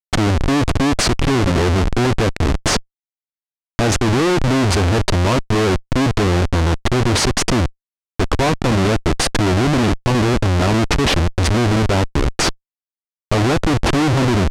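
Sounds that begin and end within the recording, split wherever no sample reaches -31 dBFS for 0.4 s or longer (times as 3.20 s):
3.79–7.69 s
8.20–12.52 s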